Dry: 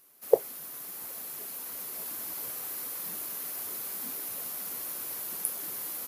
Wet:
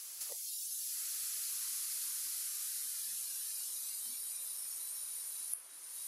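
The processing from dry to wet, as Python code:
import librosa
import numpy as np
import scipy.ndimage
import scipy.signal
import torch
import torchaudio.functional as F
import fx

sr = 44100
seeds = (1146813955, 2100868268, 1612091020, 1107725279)

y = fx.doppler_pass(x, sr, speed_mps=14, closest_m=9.4, pass_at_s=1.61)
y = fx.weighting(y, sr, curve='ITU-R 468')
y = fx.noise_reduce_blind(y, sr, reduce_db=9)
y = fx.bass_treble(y, sr, bass_db=2, treble_db=7)
y = fx.band_squash(y, sr, depth_pct=100)
y = F.gain(torch.from_numpy(y), -9.0).numpy()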